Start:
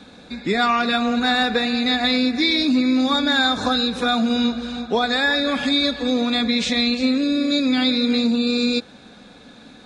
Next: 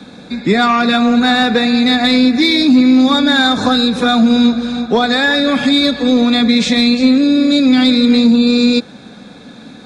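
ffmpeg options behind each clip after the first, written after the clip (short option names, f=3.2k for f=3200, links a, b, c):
-filter_complex "[0:a]equalizer=f=150:t=o:w=1.7:g=10.5,bandreject=f=2.9k:w=14,acrossover=split=230[a][b];[b]acontrast=57[c];[a][c]amix=inputs=2:normalize=0"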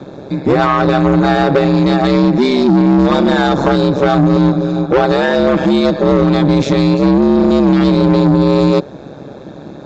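-af "equalizer=f=125:t=o:w=1:g=3,equalizer=f=250:t=o:w=1:g=4,equalizer=f=500:t=o:w=1:g=12,equalizer=f=1k:t=o:w=1:g=6,equalizer=f=2k:t=o:w=1:g=-3,equalizer=f=4k:t=o:w=1:g=-5,aresample=16000,asoftclip=type=tanh:threshold=-4dB,aresample=44100,aeval=exprs='val(0)*sin(2*PI*68*n/s)':c=same"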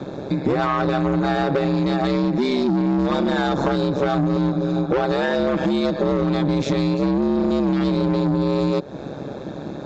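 -af "acompressor=threshold=-18dB:ratio=5"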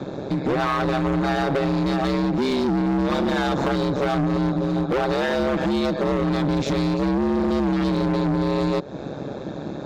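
-af "asoftclip=type=hard:threshold=-18dB"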